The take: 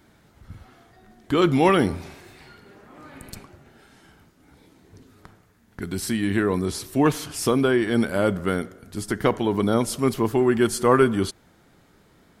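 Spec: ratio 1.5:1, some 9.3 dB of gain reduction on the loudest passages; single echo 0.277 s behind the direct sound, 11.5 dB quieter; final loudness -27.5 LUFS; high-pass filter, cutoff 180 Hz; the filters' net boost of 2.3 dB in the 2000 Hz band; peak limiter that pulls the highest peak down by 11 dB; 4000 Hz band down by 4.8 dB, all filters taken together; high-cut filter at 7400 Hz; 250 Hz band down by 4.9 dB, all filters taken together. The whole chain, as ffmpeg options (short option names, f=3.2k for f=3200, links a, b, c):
-af "highpass=180,lowpass=7.4k,equalizer=f=250:t=o:g=-5.5,equalizer=f=2k:t=o:g=5,equalizer=f=4k:t=o:g=-8.5,acompressor=threshold=-40dB:ratio=1.5,alimiter=limit=-23dB:level=0:latency=1,aecho=1:1:277:0.266,volume=8dB"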